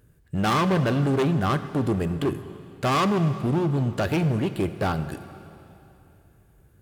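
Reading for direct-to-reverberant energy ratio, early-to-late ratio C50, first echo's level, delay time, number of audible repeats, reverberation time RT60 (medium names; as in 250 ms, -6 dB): 10.5 dB, 11.5 dB, no echo, no echo, no echo, 2.9 s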